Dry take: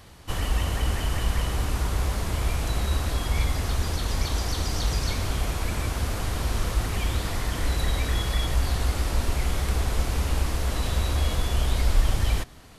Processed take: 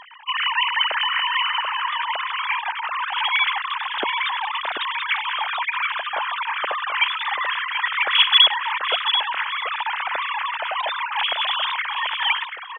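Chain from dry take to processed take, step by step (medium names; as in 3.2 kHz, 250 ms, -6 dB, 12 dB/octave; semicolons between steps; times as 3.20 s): formants replaced by sine waves; brick-wall FIR high-pass 190 Hz; delay 735 ms -8 dB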